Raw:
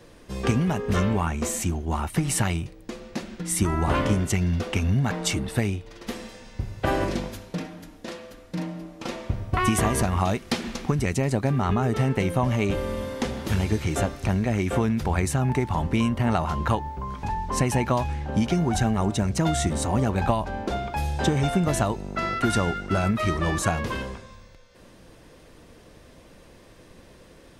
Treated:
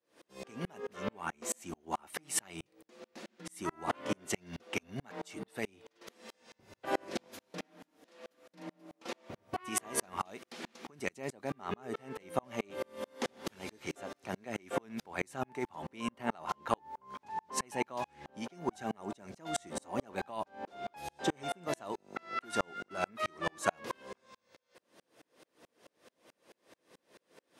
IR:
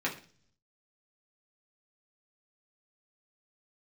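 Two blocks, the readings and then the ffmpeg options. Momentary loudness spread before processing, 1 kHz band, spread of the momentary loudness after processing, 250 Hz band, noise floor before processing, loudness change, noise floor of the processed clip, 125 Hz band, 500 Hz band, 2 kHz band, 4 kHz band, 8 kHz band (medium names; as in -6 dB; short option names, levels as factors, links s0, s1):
12 LU, -10.5 dB, 14 LU, -17.0 dB, -51 dBFS, -14.0 dB, -81 dBFS, -26.0 dB, -11.5 dB, -10.5 dB, -11.5 dB, -10.0 dB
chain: -af "highpass=320,aeval=exprs='val(0)*pow(10,-38*if(lt(mod(-4.6*n/s,1),2*abs(-4.6)/1000),1-mod(-4.6*n/s,1)/(2*abs(-4.6)/1000),(mod(-4.6*n/s,1)-2*abs(-4.6)/1000)/(1-2*abs(-4.6)/1000))/20)':c=same,volume=0.891"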